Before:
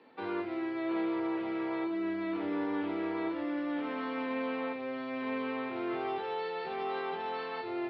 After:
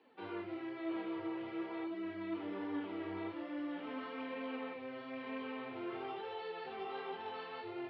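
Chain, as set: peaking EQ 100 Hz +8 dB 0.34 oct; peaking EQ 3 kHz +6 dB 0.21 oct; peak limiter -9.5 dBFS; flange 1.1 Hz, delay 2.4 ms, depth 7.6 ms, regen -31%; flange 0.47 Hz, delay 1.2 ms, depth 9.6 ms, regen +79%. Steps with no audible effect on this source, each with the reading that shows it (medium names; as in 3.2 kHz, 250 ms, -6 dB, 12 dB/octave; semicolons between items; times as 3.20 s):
peak limiter -9.5 dBFS: peak at its input -23.0 dBFS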